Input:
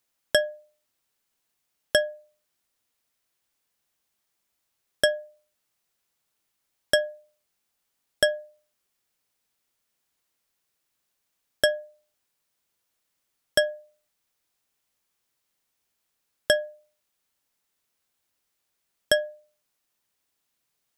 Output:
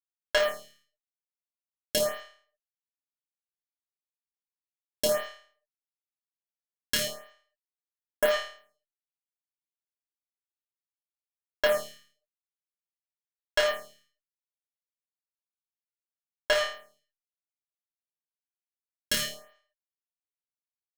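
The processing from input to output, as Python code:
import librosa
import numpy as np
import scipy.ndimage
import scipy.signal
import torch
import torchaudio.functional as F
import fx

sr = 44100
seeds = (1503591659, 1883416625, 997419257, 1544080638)

y = fx.fuzz(x, sr, gain_db=40.0, gate_db=-37.0)
y = fx.room_flutter(y, sr, wall_m=4.7, rt60_s=0.49)
y = fx.stagger_phaser(y, sr, hz=0.98)
y = y * librosa.db_to_amplitude(-4.0)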